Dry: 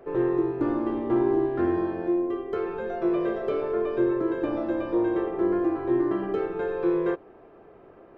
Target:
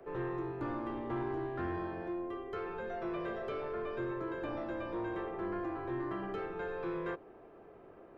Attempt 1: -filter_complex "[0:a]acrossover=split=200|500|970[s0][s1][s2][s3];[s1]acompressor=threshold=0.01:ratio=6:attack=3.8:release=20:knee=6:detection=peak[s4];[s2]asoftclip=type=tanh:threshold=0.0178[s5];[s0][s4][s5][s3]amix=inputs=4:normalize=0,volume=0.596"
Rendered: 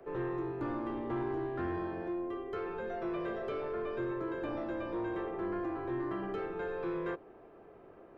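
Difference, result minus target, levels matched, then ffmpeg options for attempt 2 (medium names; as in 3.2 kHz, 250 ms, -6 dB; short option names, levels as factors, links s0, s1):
compression: peak gain reduction -6 dB
-filter_complex "[0:a]acrossover=split=200|500|970[s0][s1][s2][s3];[s1]acompressor=threshold=0.00447:ratio=6:attack=3.8:release=20:knee=6:detection=peak[s4];[s2]asoftclip=type=tanh:threshold=0.0178[s5];[s0][s4][s5][s3]amix=inputs=4:normalize=0,volume=0.596"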